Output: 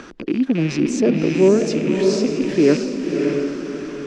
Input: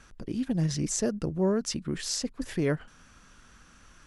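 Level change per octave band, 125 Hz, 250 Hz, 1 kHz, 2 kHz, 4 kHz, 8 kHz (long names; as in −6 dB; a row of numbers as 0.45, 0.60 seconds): +6.0, +13.5, +9.0, +12.0, +5.0, 0.0 decibels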